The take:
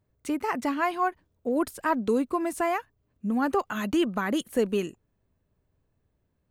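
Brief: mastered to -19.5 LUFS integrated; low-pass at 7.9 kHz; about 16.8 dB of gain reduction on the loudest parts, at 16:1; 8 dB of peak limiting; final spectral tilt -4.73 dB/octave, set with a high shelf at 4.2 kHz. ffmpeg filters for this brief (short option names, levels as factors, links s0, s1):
-af "lowpass=7900,highshelf=f=4200:g=-8.5,acompressor=threshold=0.0141:ratio=16,volume=16.8,alimiter=limit=0.335:level=0:latency=1"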